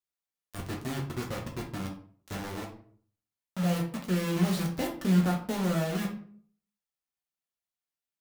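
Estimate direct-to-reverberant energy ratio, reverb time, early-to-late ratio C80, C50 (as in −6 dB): −1.0 dB, 0.55 s, 13.0 dB, 7.5 dB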